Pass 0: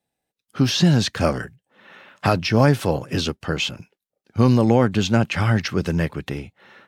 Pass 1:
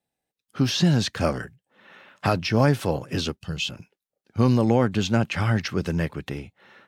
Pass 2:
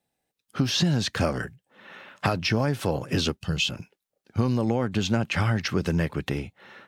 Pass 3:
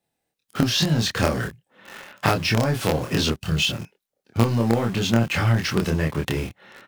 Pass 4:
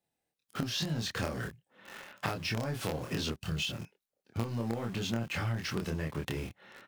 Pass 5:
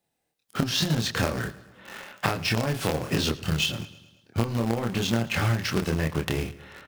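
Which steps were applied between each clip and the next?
time-frequency box 3.38–3.69 s, 200–2500 Hz -11 dB; trim -3.5 dB
compression 6:1, threshold -24 dBFS, peak gain reduction 10.5 dB; trim +4 dB
in parallel at -9 dB: companded quantiser 2-bit; on the sum: doubling 26 ms -2 dB; trim -1 dB
compression 2.5:1, threshold -26 dBFS, peak gain reduction 10 dB; trim -7 dB
feedback delay 109 ms, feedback 56%, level -17 dB; in parallel at -10 dB: bit crusher 5-bit; on the sum: trim +6.5 dB

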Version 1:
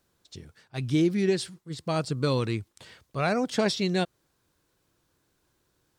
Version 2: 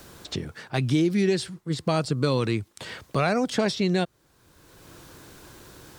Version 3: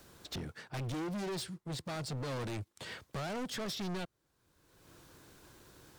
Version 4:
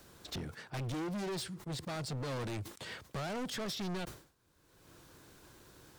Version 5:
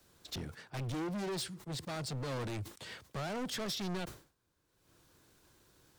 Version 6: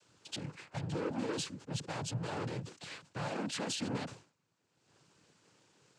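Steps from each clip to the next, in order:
in parallel at 0 dB: peak limiter -20.5 dBFS, peak gain reduction 8 dB; on the sum: three bands compressed up and down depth 70%; trim -2 dB
peak limiter -15 dBFS, peak gain reduction 5 dB; hard clipper -32.5 dBFS, distortion -4 dB; upward expansion 1.5:1, over -55 dBFS; trim -3.5 dB
decay stretcher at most 120 dB/s
three bands expanded up and down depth 40%
noise-vocoded speech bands 8; trim +1 dB

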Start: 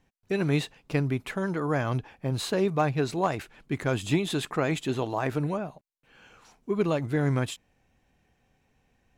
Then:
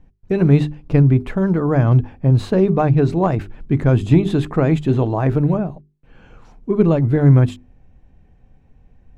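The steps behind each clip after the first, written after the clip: tilt EQ -4 dB/octave; hum notches 50/100/150/200/250/300/350/400 Hz; trim +5 dB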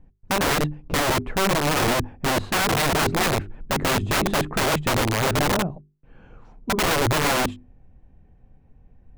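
treble shelf 2.7 kHz -11 dB; integer overflow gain 14 dB; trim -2 dB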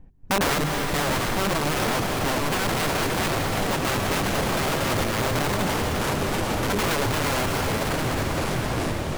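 ever faster or slower copies 527 ms, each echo -5 st, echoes 3, each echo -6 dB; reverberation RT60 6.3 s, pre-delay 119 ms, DRR 3 dB; peak limiter -19 dBFS, peak gain reduction 11 dB; trim +3 dB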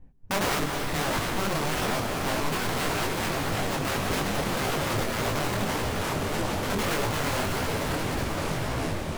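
detune thickener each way 59 cents

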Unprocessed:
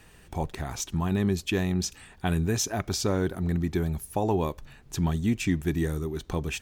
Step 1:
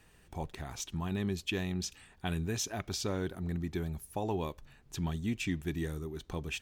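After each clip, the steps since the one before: dynamic bell 3.1 kHz, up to +6 dB, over -47 dBFS, Q 1.2; trim -8.5 dB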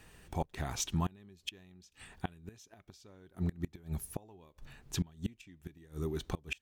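inverted gate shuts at -27 dBFS, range -27 dB; trim +4.5 dB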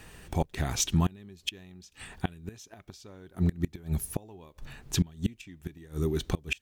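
dynamic bell 950 Hz, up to -5 dB, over -55 dBFS, Q 1.1; trim +8 dB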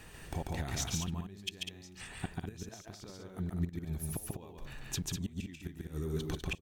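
compression 6:1, threshold -32 dBFS, peak gain reduction 12 dB; on a send: loudspeakers at several distances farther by 48 m -2 dB, 68 m -6 dB; on the sum: trim -2.5 dB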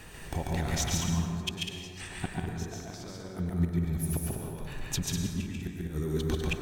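plate-style reverb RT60 2.2 s, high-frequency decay 0.4×, pre-delay 90 ms, DRR 2.5 dB; trim +4.5 dB

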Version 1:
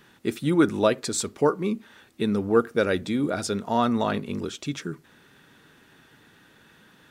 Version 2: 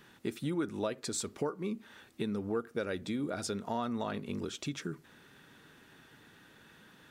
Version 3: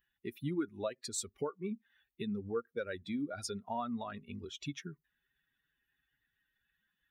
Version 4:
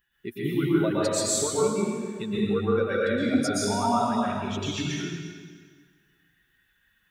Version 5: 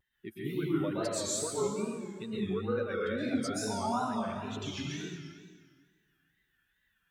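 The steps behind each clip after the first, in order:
compression 3:1, threshold -31 dBFS, peak gain reduction 13 dB; trim -3 dB
expander on every frequency bin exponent 2; trim +1 dB
plate-style reverb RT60 1.7 s, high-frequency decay 0.9×, pre-delay 105 ms, DRR -8 dB; trim +6 dB
wow and flutter 110 cents; trim -8 dB

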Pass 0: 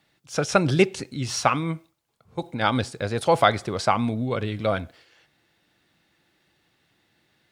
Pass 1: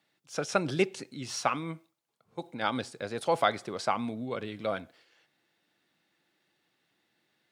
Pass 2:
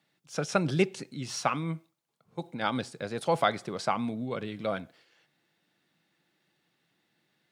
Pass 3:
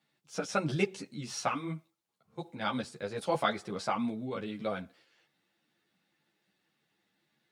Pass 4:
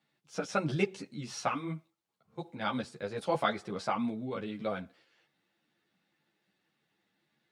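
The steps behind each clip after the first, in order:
high-pass 180 Hz 12 dB/octave; trim -7.5 dB
peaking EQ 160 Hz +7 dB 0.77 oct
three-phase chorus
treble shelf 6 kHz -6.5 dB

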